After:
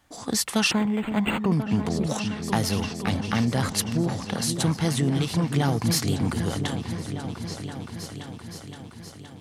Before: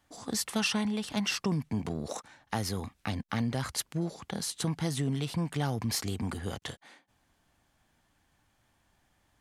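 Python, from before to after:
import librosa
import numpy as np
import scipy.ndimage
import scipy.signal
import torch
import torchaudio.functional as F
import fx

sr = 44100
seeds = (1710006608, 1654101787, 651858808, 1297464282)

y = fx.echo_opening(x, sr, ms=519, hz=400, octaves=2, feedback_pct=70, wet_db=-6)
y = fx.resample_linear(y, sr, factor=8, at=(0.71, 1.52))
y = y * 10.0 ** (7.0 / 20.0)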